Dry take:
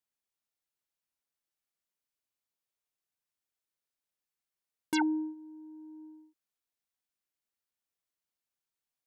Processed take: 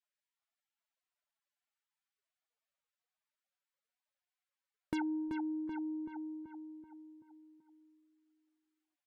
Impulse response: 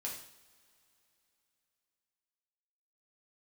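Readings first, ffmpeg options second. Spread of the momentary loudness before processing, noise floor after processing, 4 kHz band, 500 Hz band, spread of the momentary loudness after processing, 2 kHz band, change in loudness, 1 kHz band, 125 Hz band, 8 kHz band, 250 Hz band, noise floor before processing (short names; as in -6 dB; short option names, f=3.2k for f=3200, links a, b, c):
19 LU, under -85 dBFS, -13.0 dB, -1.5 dB, 18 LU, -8.0 dB, -7.5 dB, -7.0 dB, n/a, under -15 dB, -2.0 dB, under -85 dBFS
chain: -filter_complex "[0:a]bass=f=250:g=4,treble=f=4k:g=-11,asplit=2[a][b];[b]adelay=382,lowpass=f=2.2k:p=1,volume=-6.5dB,asplit=2[c][d];[d]adelay=382,lowpass=f=2.2k:p=1,volume=0.53,asplit=2[e][f];[f]adelay=382,lowpass=f=2.2k:p=1,volume=0.53,asplit=2[g][h];[h]adelay=382,lowpass=f=2.2k:p=1,volume=0.53,asplit=2[i][j];[j]adelay=382,lowpass=f=2.2k:p=1,volume=0.53,asplit=2[k][l];[l]adelay=382,lowpass=f=2.2k:p=1,volume=0.53,asplit=2[m][n];[n]adelay=382,lowpass=f=2.2k:p=1,volume=0.53[o];[c][e][g][i][k][m][o]amix=inputs=7:normalize=0[p];[a][p]amix=inputs=2:normalize=0,acompressor=threshold=-40dB:ratio=3,lowshelf=f=130:g=11.5,volume=1dB" -ar 48000 -c:a libvorbis -b:a 48k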